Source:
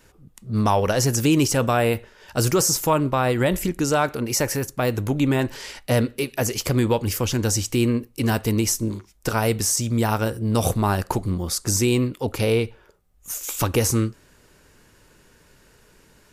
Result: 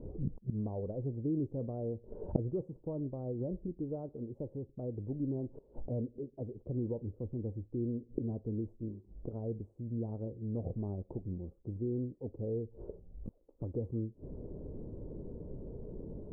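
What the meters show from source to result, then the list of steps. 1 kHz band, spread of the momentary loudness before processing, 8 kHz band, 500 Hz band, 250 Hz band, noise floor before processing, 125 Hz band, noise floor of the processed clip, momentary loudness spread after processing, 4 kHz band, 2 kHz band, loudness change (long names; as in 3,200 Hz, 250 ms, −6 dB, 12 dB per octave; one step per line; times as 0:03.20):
−31.0 dB, 7 LU, below −40 dB, −16.5 dB, −14.5 dB, −56 dBFS, −14.5 dB, −64 dBFS, 10 LU, below −40 dB, below −40 dB, −17.5 dB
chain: gate with flip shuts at −26 dBFS, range −28 dB
inverse Chebyshev low-pass filter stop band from 1,800 Hz, stop band 60 dB
level +13 dB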